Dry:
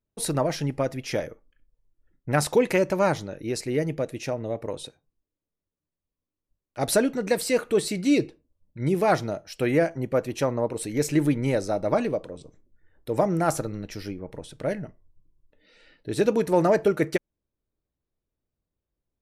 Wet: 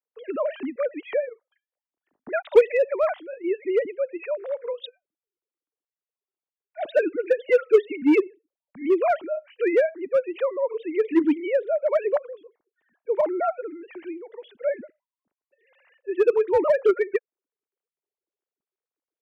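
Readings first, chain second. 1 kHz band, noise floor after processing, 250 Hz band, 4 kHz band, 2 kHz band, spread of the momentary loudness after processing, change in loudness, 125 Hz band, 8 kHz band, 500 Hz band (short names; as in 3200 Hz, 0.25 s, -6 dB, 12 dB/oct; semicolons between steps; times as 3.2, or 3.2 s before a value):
-2.0 dB, under -85 dBFS, -1.5 dB, n/a, -0.5 dB, 16 LU, +1.5 dB, under -30 dB, under -25 dB, +3.5 dB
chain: sine-wave speech; in parallel at -9.5 dB: wavefolder -17.5 dBFS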